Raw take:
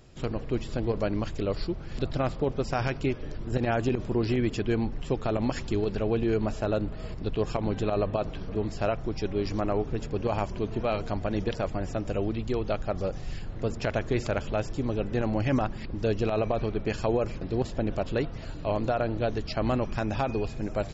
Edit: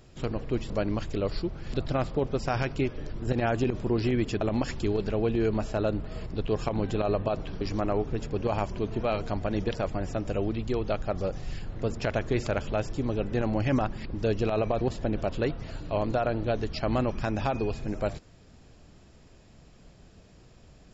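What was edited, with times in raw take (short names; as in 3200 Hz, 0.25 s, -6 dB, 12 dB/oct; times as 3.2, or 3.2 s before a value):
0.7–0.95 cut
4.66–5.29 cut
8.49–9.41 cut
16.61–17.55 cut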